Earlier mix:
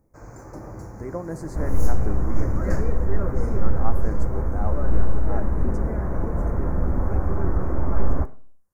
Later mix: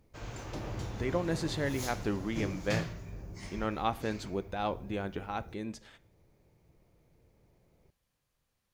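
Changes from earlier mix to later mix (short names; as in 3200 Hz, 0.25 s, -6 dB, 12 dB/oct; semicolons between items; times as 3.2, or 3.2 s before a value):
first sound: send off; second sound: muted; master: remove Butterworth band-stop 3200 Hz, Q 0.6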